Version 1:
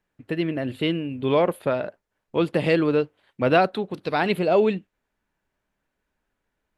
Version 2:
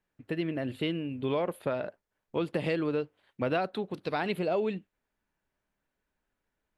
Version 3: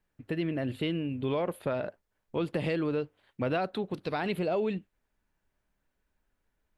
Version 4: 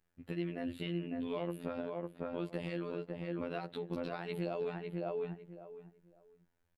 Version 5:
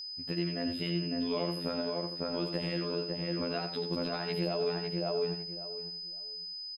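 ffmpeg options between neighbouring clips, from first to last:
-af "acompressor=threshold=-22dB:ratio=3,volume=-5dB"
-filter_complex "[0:a]lowshelf=f=86:g=9.5,asplit=2[a][b];[b]alimiter=level_in=2dB:limit=-24dB:level=0:latency=1:release=26,volume=-2dB,volume=-1dB[c];[a][c]amix=inputs=2:normalize=0,volume=-4.5dB"
-filter_complex "[0:a]asplit=2[a][b];[b]adelay=553,lowpass=f=1.6k:p=1,volume=-4dB,asplit=2[c][d];[d]adelay=553,lowpass=f=1.6k:p=1,volume=0.21,asplit=2[e][f];[f]adelay=553,lowpass=f=1.6k:p=1,volume=0.21[g];[a][c][e][g]amix=inputs=4:normalize=0,alimiter=level_in=2.5dB:limit=-24dB:level=0:latency=1:release=438,volume=-2.5dB,afftfilt=real='hypot(re,im)*cos(PI*b)':imag='0':win_size=2048:overlap=0.75"
-filter_complex "[0:a]asplit=2[a][b];[b]aecho=0:1:86:0.422[c];[a][c]amix=inputs=2:normalize=0,aeval=exprs='val(0)+0.00708*sin(2*PI*5000*n/s)':c=same,volume=4dB"

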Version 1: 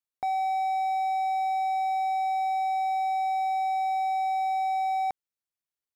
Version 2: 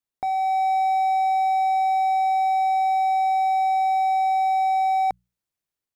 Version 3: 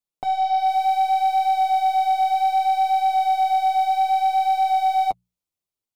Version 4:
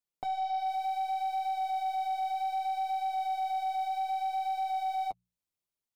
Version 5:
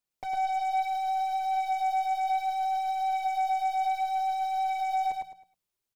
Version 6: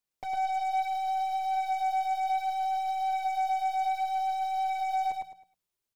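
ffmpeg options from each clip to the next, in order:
-af "bandreject=f=60:t=h:w=6,bandreject=f=120:t=h:w=6,bandreject=f=180:t=h:w=6,dynaudnorm=f=180:g=5:m=3.5dB,lowshelf=f=450:g=7,volume=1dB"
-af "equalizer=f=1.7k:t=o:w=0.48:g=-10,aeval=exprs='0.133*(cos(1*acos(clip(val(0)/0.133,-1,1)))-cos(1*PI/2))+0.00376*(cos(6*acos(clip(val(0)/0.133,-1,1)))-cos(6*PI/2))+0.00596*(cos(7*acos(clip(val(0)/0.133,-1,1)))-cos(7*PI/2))':c=same,flanger=delay=4.6:depth=8.4:regen=-12:speed=0.64:shape=triangular,volume=5dB"
-af "alimiter=limit=-23.5dB:level=0:latency=1:release=324,volume=-3.5dB"
-af "asoftclip=type=hard:threshold=-33.5dB,aecho=1:1:106|212|318|424:0.708|0.205|0.0595|0.0173,aphaser=in_gain=1:out_gain=1:delay=2.8:decay=0.21:speed=1.3:type=sinusoidal,volume=2.5dB"
-af "aeval=exprs='0.0708*(cos(1*acos(clip(val(0)/0.0708,-1,1)))-cos(1*PI/2))+0.00126*(cos(6*acos(clip(val(0)/0.0708,-1,1)))-cos(6*PI/2))':c=same,volume=-1dB"

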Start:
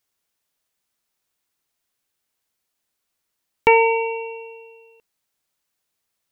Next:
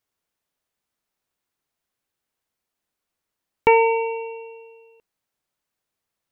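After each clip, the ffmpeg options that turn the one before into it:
-af "highshelf=f=2.3k:g=-7.5"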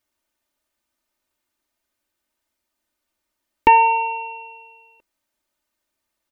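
-af "aecho=1:1:3.3:0.78,volume=2dB"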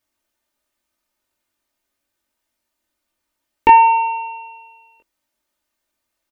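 -filter_complex "[0:a]asplit=2[a][b];[b]adelay=21,volume=-3dB[c];[a][c]amix=inputs=2:normalize=0"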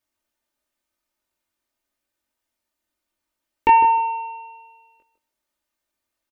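-filter_complex "[0:a]asplit=2[a][b];[b]adelay=154,lowpass=f=1.6k:p=1,volume=-9dB,asplit=2[c][d];[d]adelay=154,lowpass=f=1.6k:p=1,volume=0.16[e];[a][c][e]amix=inputs=3:normalize=0,volume=-5dB"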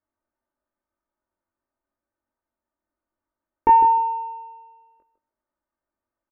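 -af "lowpass=f=1.5k:w=0.5412,lowpass=f=1.5k:w=1.3066"

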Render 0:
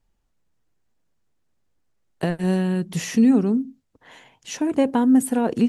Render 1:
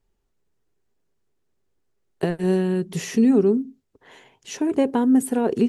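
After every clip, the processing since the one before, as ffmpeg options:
-af "equalizer=f=400:w=4.8:g=12,volume=-2dB"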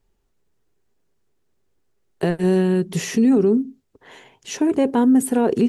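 -af "alimiter=limit=-13.5dB:level=0:latency=1:release=12,volume=4dB"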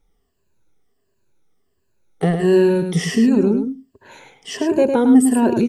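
-af "afftfilt=real='re*pow(10,14/40*sin(2*PI*(1.4*log(max(b,1)*sr/1024/100)/log(2)-(-1.4)*(pts-256)/sr)))':imag='im*pow(10,14/40*sin(2*PI*(1.4*log(max(b,1)*sr/1024/100)/log(2)-(-1.4)*(pts-256)/sr)))':win_size=1024:overlap=0.75,aecho=1:1:105:0.447"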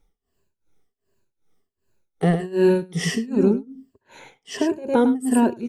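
-af "tremolo=f=2.6:d=0.94"

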